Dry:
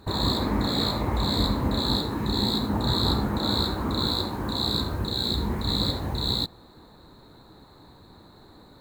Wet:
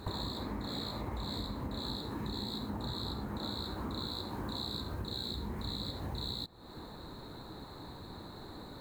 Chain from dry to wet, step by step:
downward compressor 12 to 1, threshold −39 dBFS, peak gain reduction 20 dB
level +3.5 dB

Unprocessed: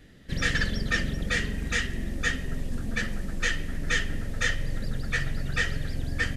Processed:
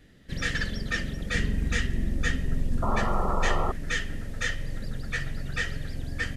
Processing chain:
0:01.34–0:03.70: low-shelf EQ 340 Hz +8 dB
0:02.82–0:03.72: sound drawn into the spectrogram noise 340–1,400 Hz −27 dBFS
level −3 dB

